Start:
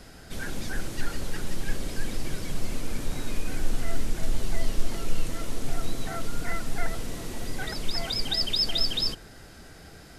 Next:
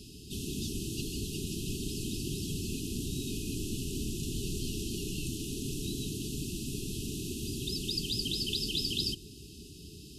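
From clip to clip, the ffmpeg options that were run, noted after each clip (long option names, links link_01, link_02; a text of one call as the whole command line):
ffmpeg -i in.wav -af "afftfilt=real='re*(1-between(b*sr/4096,440,2500))':imag='im*(1-between(b*sr/4096,440,2500))':win_size=4096:overlap=0.75,highpass=55,afftfilt=real='re*lt(hypot(re,im),0.224)':imag='im*lt(hypot(re,im),0.224)':win_size=1024:overlap=0.75,volume=1.5dB" out.wav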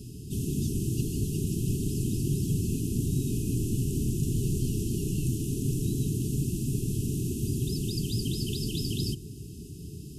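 ffmpeg -i in.wav -af "equalizer=frequency=125:width_type=o:width=1:gain=9,equalizer=frequency=2000:width_type=o:width=1:gain=-8,equalizer=frequency=4000:width_type=o:width=1:gain=-11,volume=4dB" out.wav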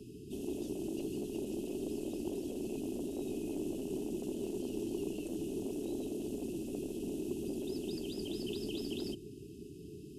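ffmpeg -i in.wav -filter_complex "[0:a]asoftclip=type=tanh:threshold=-21dB,afftfilt=real='re*lt(hypot(re,im),0.224)':imag='im*lt(hypot(re,im),0.224)':win_size=1024:overlap=0.75,acrossover=split=290 2400:gain=0.126 1 0.141[link_01][link_02][link_03];[link_01][link_02][link_03]amix=inputs=3:normalize=0,volume=3.5dB" out.wav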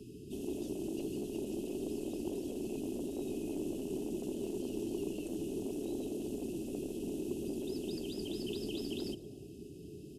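ffmpeg -i in.wav -filter_complex "[0:a]asplit=4[link_01][link_02][link_03][link_04];[link_02]adelay=109,afreqshift=120,volume=-23.5dB[link_05];[link_03]adelay=218,afreqshift=240,volume=-29.7dB[link_06];[link_04]adelay=327,afreqshift=360,volume=-35.9dB[link_07];[link_01][link_05][link_06][link_07]amix=inputs=4:normalize=0" out.wav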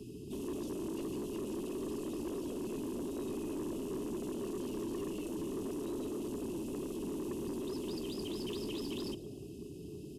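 ffmpeg -i in.wav -af "asoftclip=type=tanh:threshold=-37dB,volume=3dB" out.wav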